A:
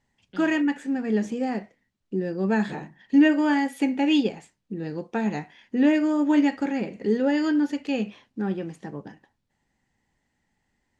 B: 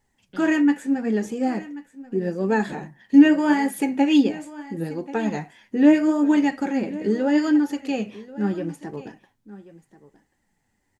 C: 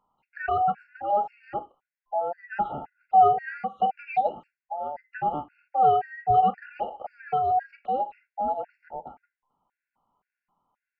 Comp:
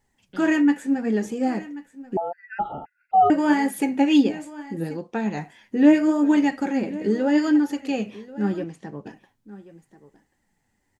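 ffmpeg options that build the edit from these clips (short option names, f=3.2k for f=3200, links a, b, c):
-filter_complex "[0:a]asplit=2[a][b];[1:a]asplit=4[c][d][e][f];[c]atrim=end=2.172[g];[2:a]atrim=start=2.168:end=3.302[h];[d]atrim=start=3.298:end=4.972[i];[a]atrim=start=4.968:end=5.372[j];[e]atrim=start=5.368:end=8.642[k];[b]atrim=start=8.638:end=9.062[l];[f]atrim=start=9.058[m];[g][h]acrossfade=d=0.004:c1=hsin:c2=hsin[n];[n][i]acrossfade=d=0.004:c1=hsin:c2=hsin[o];[o][j]acrossfade=d=0.004:c1=hsin:c2=hsin[p];[p][k]acrossfade=d=0.004:c1=hsin:c2=hsin[q];[q][l]acrossfade=d=0.004:c1=hsin:c2=hsin[r];[r][m]acrossfade=d=0.004:c1=hsin:c2=hsin"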